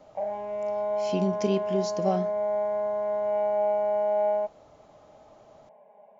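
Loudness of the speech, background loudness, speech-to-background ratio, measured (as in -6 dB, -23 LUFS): -29.5 LUFS, -28.0 LUFS, -1.5 dB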